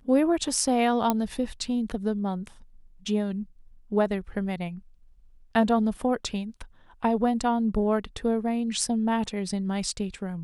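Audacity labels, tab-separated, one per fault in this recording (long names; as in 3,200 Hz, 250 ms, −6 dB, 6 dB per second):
1.100000	1.100000	click −9 dBFS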